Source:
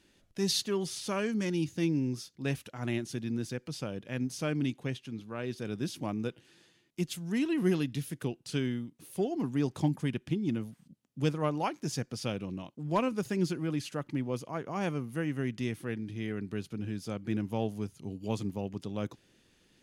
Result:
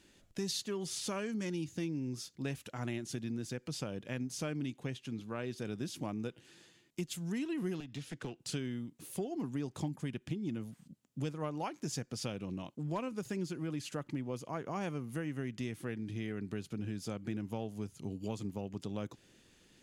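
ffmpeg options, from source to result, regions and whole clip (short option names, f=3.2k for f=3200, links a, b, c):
-filter_complex "[0:a]asettb=1/sr,asplit=3[a][b][c];[a]atrim=end=7.804[d];[b]atrim=start=7.8:end=8.4,asetpts=PTS-STARTPTS,afade=t=in:d=0.004:c=qsin,afade=t=out:st=0.596:d=0.004:c=qsin,lowpass=5.3k,acrossover=split=200|590[e][f][g];[e]acompressor=threshold=-46dB:ratio=4[h];[f]acompressor=threshold=-44dB:ratio=4[i];[g]acompressor=threshold=-45dB:ratio=4[j];[h][i][j]amix=inputs=3:normalize=0,aeval=exprs='clip(val(0),-1,0.00944)':c=same[k];[c]atrim=start=8.396[l];[d][k]acrossfade=d=0.004:c1=hsin:c2=qsin[m];[m][l]acrossfade=d=0.004:c1=qsin:c2=hsin,equalizer=f=7.3k:w=4.1:g=5,acompressor=threshold=-37dB:ratio=4,volume=1.5dB"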